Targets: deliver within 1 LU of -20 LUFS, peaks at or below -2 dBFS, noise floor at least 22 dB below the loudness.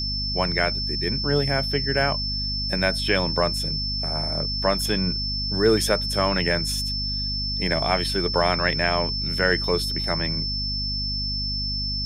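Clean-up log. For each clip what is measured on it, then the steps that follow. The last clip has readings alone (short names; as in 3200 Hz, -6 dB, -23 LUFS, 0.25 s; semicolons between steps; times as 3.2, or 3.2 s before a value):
hum 50 Hz; harmonics up to 250 Hz; hum level -28 dBFS; steady tone 5300 Hz; tone level -26 dBFS; loudness -23.0 LUFS; peak -5.5 dBFS; loudness target -20.0 LUFS
-> de-hum 50 Hz, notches 5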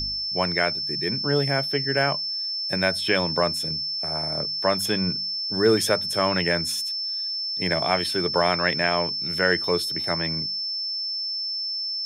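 hum none; steady tone 5300 Hz; tone level -26 dBFS
-> notch 5300 Hz, Q 30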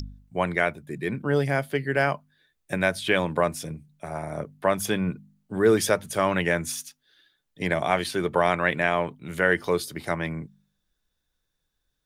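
steady tone none; loudness -25.5 LUFS; peak -6.0 dBFS; loudness target -20.0 LUFS
-> gain +5.5 dB; limiter -2 dBFS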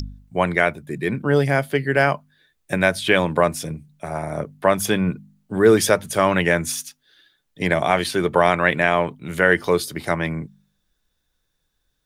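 loudness -20.5 LUFS; peak -2.0 dBFS; noise floor -72 dBFS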